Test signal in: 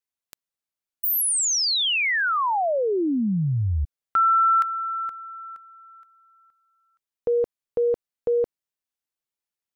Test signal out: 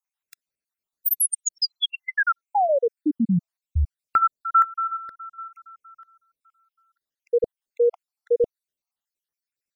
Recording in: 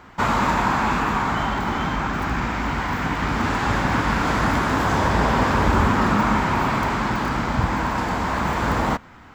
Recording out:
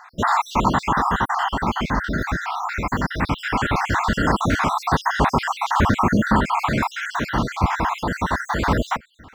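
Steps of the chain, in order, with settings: random holes in the spectrogram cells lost 61%; trim +4 dB

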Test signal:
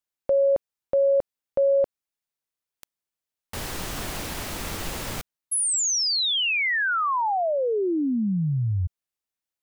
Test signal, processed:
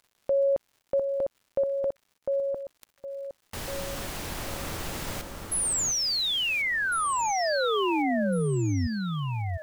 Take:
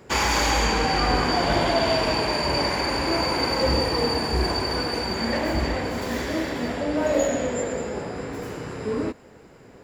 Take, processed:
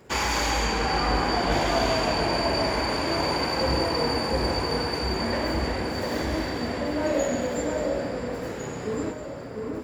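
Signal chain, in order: echo whose repeats swap between lows and highs 702 ms, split 1.7 kHz, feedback 55%, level -3 dB; crackle 250 per s -48 dBFS; trim -3.5 dB

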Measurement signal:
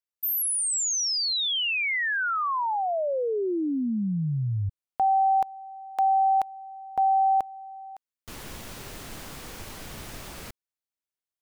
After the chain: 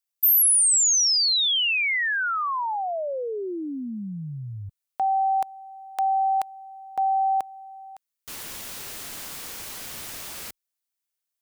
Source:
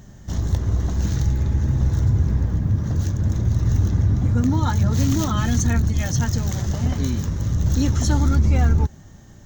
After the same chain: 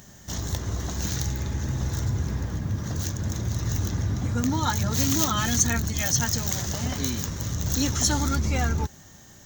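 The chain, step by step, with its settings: tilt EQ +2.5 dB/octave

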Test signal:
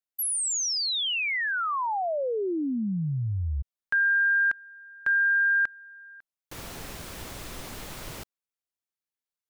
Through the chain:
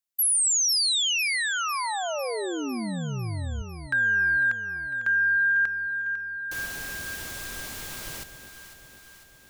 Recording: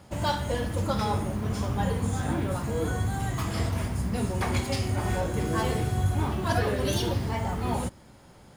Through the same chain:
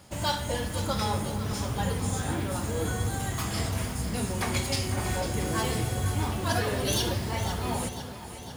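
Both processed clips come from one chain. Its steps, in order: treble shelf 2.4 kHz +9 dB; echo whose repeats swap between lows and highs 250 ms, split 820 Hz, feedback 78%, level -9 dB; trim -3 dB

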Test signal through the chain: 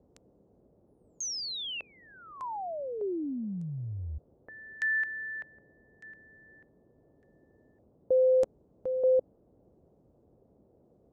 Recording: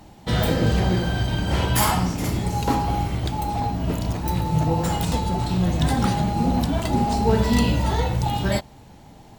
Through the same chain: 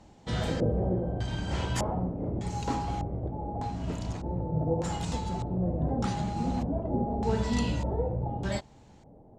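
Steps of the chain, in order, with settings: treble shelf 5 kHz -8 dB; LFO low-pass square 0.83 Hz 550–7200 Hz; band noise 37–540 Hz -55 dBFS; trim -9 dB

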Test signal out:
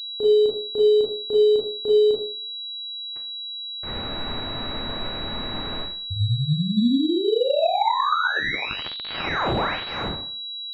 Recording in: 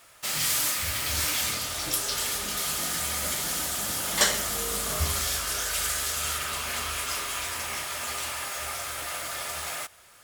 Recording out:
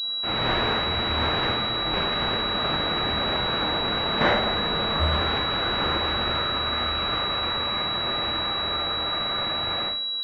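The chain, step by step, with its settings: Schroeder reverb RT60 0.46 s, combs from 26 ms, DRR -4.5 dB; class-D stage that switches slowly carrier 3.9 kHz

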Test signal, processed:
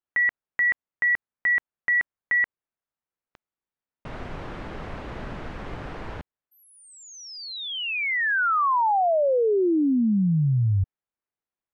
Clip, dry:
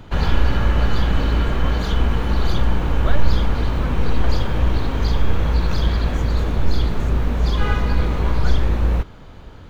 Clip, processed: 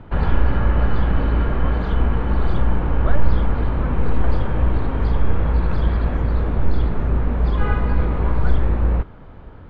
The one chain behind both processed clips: low-pass 1.8 kHz 12 dB/octave

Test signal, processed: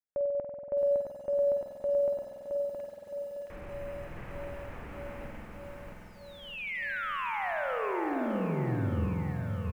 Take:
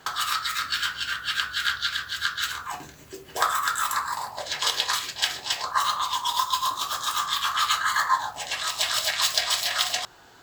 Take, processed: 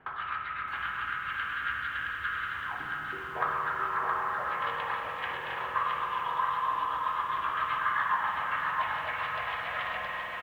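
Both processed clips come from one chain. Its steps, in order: bass shelf 200 Hz +4 dB; spring tank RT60 3.7 s, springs 47 ms, chirp 75 ms, DRR 1.5 dB; reverse; upward compressor, threshold -32 dBFS; reverse; steep low-pass 2.5 kHz 36 dB/octave; delay 669 ms -3.5 dB; bit-crushed delay 616 ms, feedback 80%, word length 8-bit, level -12.5 dB; trim -7 dB

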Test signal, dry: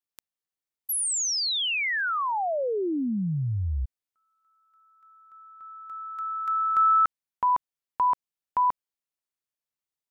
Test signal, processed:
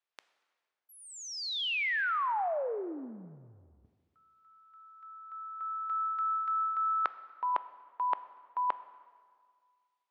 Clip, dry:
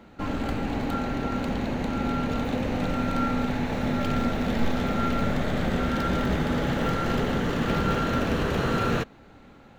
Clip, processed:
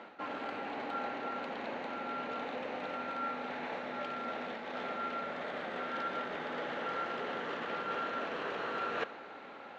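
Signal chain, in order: reverse; compression 12:1, threshold -36 dBFS; reverse; band-pass 510–3200 Hz; plate-style reverb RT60 1.9 s, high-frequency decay 0.75×, DRR 14 dB; trim +7 dB

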